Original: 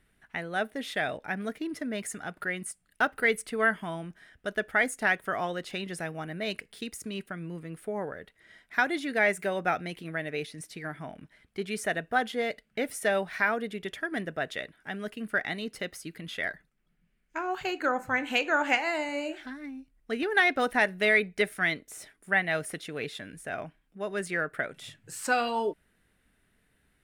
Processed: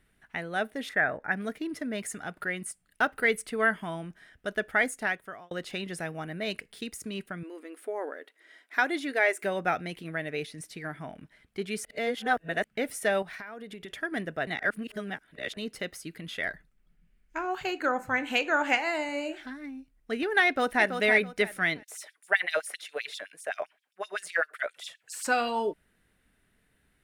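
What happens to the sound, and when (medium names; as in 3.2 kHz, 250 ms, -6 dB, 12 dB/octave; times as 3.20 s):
0.89–1.32 s: resonant high shelf 2.4 kHz -11 dB, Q 3
4.84–5.51 s: fade out
7.43–9.43 s: brick-wall FIR high-pass 240 Hz
11.85–12.64 s: reverse
13.22–13.90 s: compression 8:1, threshold -38 dBFS
14.47–15.57 s: reverse
16.47–17.45 s: bass shelf 72 Hz +11.5 dB
20.46–20.97 s: echo throw 330 ms, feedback 25%, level -7 dB
21.83–25.25 s: LFO high-pass sine 7.7 Hz 500–5400 Hz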